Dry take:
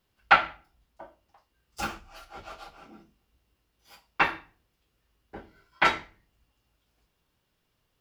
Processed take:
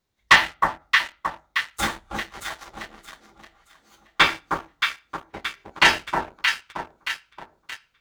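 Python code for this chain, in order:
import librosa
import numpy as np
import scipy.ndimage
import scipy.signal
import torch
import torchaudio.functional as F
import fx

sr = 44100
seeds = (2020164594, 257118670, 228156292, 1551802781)

y = fx.formant_shift(x, sr, semitones=5)
y = fx.echo_alternate(y, sr, ms=312, hz=1200.0, feedback_pct=69, wet_db=-3)
y = fx.leveller(y, sr, passes=2)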